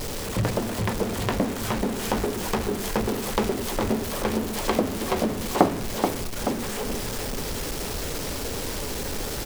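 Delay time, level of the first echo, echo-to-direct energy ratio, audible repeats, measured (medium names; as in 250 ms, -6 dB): 431 ms, -6.0 dB, -5.0 dB, 2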